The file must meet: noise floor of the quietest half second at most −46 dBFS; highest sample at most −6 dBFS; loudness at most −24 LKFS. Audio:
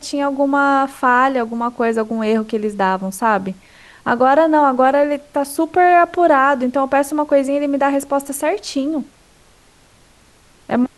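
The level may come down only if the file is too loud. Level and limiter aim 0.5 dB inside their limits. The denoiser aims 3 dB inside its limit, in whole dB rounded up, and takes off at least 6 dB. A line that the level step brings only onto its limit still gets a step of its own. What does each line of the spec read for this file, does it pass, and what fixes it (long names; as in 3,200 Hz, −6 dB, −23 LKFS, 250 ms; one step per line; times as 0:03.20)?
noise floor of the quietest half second −50 dBFS: in spec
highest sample −3.0 dBFS: out of spec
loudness −16.5 LKFS: out of spec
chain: level −8 dB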